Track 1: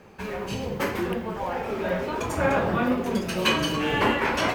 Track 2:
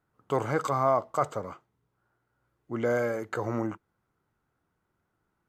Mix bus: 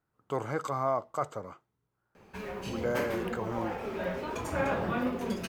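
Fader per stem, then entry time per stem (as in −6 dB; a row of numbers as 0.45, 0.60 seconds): −7.0, −5.0 decibels; 2.15, 0.00 seconds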